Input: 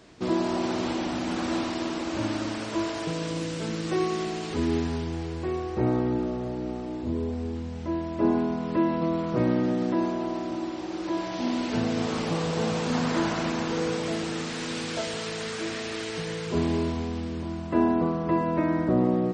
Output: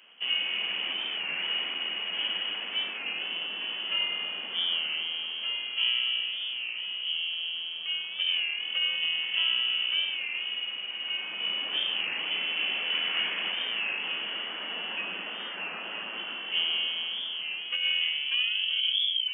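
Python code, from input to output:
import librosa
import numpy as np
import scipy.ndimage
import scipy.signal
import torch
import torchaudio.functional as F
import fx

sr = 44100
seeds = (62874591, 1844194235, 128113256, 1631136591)

p1 = fx.tape_stop_end(x, sr, length_s=1.27)
p2 = p1 + 10.0 ** (-17.5 / 20.0) * np.pad(p1, (int(83 * sr / 1000.0), 0))[:len(p1)]
p3 = fx.freq_invert(p2, sr, carrier_hz=3200)
p4 = scipy.signal.sosfilt(scipy.signal.ellip(4, 1.0, 40, 180.0, 'highpass', fs=sr, output='sos'), p3)
p5 = p4 + fx.echo_single(p4, sr, ms=972, db=-12.5, dry=0)
p6 = fx.over_compress(p5, sr, threshold_db=-23.0, ratio=-0.5)
p7 = fx.record_warp(p6, sr, rpm=33.33, depth_cents=100.0)
y = F.gain(torch.from_numpy(p7), -2.5).numpy()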